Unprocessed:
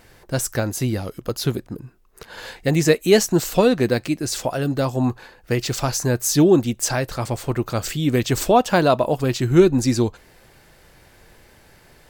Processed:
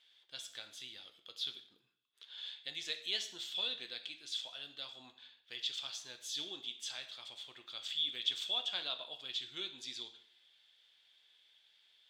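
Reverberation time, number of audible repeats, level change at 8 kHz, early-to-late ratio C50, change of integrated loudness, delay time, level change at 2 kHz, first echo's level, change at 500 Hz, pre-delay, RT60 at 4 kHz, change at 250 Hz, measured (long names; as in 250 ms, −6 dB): 0.60 s, no echo audible, −23.5 dB, 11.5 dB, −19.5 dB, no echo audible, −20.0 dB, no echo audible, −36.5 dB, 4 ms, 0.55 s, below −40 dB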